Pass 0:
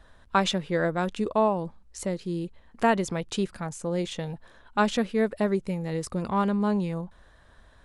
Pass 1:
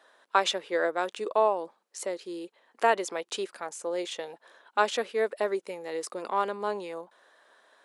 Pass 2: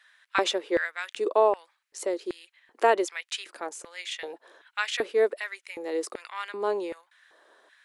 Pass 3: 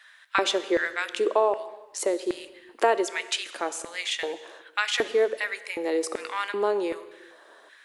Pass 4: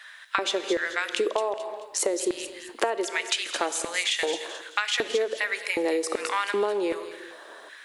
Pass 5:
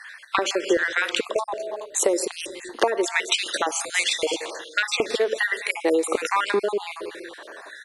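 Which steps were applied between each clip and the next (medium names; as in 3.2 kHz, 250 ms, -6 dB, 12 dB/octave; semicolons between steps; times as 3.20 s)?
high-pass 370 Hz 24 dB/octave
LFO high-pass square 1.3 Hz 330–2000 Hz
compression 2:1, threshold -30 dBFS, peak gain reduction 8.5 dB; on a send at -12.5 dB: reverberation, pre-delay 3 ms; on the sum: trim +6.5 dB
compression 12:1, threshold -29 dBFS, peak gain reduction 14 dB; feedback echo behind a high-pass 217 ms, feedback 40%, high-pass 3.5 kHz, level -6 dB; trim +7 dB
random holes in the spectrogram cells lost 38%; resampled via 32 kHz; trim +5.5 dB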